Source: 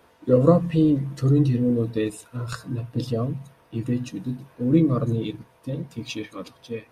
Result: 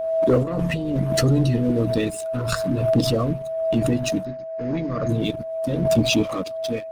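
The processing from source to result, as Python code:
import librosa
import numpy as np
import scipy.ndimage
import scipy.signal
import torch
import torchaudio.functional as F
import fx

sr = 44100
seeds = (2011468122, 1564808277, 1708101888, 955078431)

y = fx.spec_repair(x, sr, seeds[0], start_s=6.08, length_s=0.27, low_hz=500.0, high_hz=2300.0, source='both')
y = fx.low_shelf(y, sr, hz=150.0, db=7.0)
y = fx.hpss(y, sr, part='harmonic', gain_db=-12)
y = fx.low_shelf(y, sr, hz=440.0, db=7.5, at=(5.81, 6.34), fade=0.02)
y = fx.leveller(y, sr, passes=2)
y = fx.over_compress(y, sr, threshold_db=-25.0, ratio=-1.0, at=(0.42, 1.07), fade=0.02)
y = fx.cheby_ripple(y, sr, hz=6700.0, ripple_db=9, at=(4.24, 5.08), fade=0.02)
y = y + 10.0 ** (-32.0 / 20.0) * np.sin(2.0 * np.pi * 650.0 * np.arange(len(y)) / sr)
y = fx.pre_swell(y, sr, db_per_s=39.0)
y = F.gain(torch.from_numpy(y), 1.0).numpy()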